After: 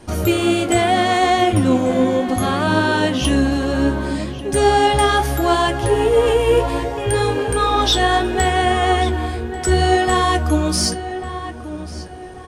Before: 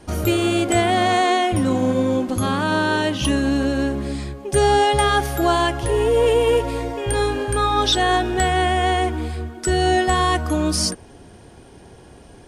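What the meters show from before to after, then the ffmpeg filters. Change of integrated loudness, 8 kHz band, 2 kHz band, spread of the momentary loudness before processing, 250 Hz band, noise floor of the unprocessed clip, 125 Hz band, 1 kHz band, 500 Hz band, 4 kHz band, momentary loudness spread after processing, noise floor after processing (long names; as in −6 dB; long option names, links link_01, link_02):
+2.0 dB, +2.0 dB, +2.0 dB, 7 LU, +2.5 dB, −45 dBFS, +3.0 dB, +2.5 dB, +2.0 dB, +2.0 dB, 10 LU, −32 dBFS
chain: -filter_complex "[0:a]acontrast=71,asplit=2[link_01][link_02];[link_02]adelay=1141,lowpass=frequency=2500:poles=1,volume=-11.5dB,asplit=2[link_03][link_04];[link_04]adelay=1141,lowpass=frequency=2500:poles=1,volume=0.36,asplit=2[link_05][link_06];[link_06]adelay=1141,lowpass=frequency=2500:poles=1,volume=0.36,asplit=2[link_07][link_08];[link_08]adelay=1141,lowpass=frequency=2500:poles=1,volume=0.36[link_09];[link_01][link_03][link_05][link_07][link_09]amix=inputs=5:normalize=0,flanger=delay=8:depth=9.5:regen=49:speed=0.69:shape=triangular"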